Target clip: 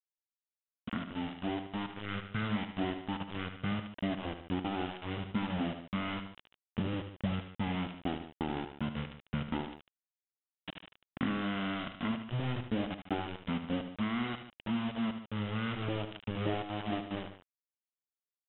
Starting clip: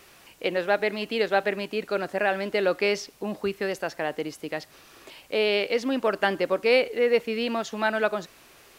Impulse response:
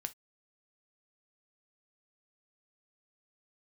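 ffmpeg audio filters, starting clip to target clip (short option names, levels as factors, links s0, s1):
-filter_complex "[0:a]acompressor=threshold=0.0178:ratio=16,equalizer=f=2300:w=3.2:g=-8.5,aresample=16000,aeval=exprs='val(0)*gte(abs(val(0)),0.0106)':c=same,aresample=44100,equalizer=f=6200:w=4.7:g=7.5,asplit=2[s0][s1];[s1]aecho=0:1:36|70:0.335|0.224[s2];[s0][s2]amix=inputs=2:normalize=0,asetrate=20948,aresample=44100,dynaudnorm=f=430:g=7:m=1.68"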